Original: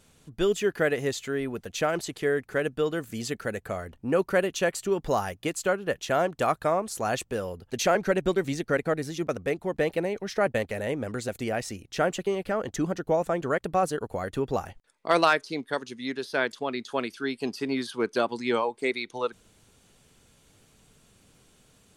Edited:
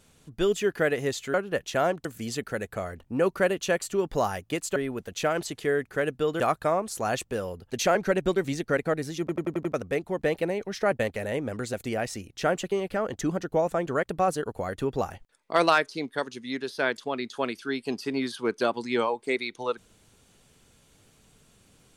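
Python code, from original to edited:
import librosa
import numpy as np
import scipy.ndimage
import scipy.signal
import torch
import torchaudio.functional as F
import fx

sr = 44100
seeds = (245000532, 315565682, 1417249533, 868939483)

y = fx.edit(x, sr, fx.swap(start_s=1.34, length_s=1.64, other_s=5.69, other_length_s=0.71),
    fx.stutter(start_s=9.2, slice_s=0.09, count=6), tone=tone)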